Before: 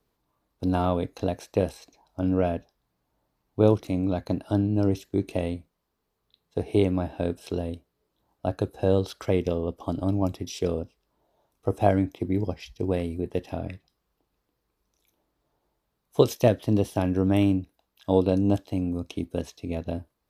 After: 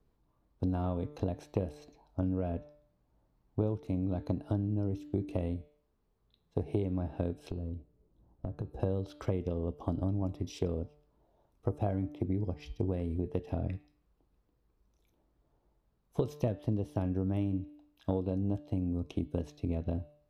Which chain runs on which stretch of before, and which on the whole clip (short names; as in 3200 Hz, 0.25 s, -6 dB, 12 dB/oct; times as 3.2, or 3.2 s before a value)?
7.5–8.8 tilt shelf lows +7 dB, about 650 Hz + compressor 12:1, threshold -35 dBFS
whole clip: tilt -2.5 dB/oct; de-hum 148.1 Hz, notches 33; compressor 6:1, threshold -25 dBFS; gain -3.5 dB